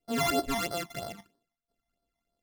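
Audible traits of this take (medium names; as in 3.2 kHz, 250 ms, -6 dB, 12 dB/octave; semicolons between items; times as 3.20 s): a buzz of ramps at a fixed pitch in blocks of 64 samples; phasing stages 12, 3.1 Hz, lowest notch 440–2500 Hz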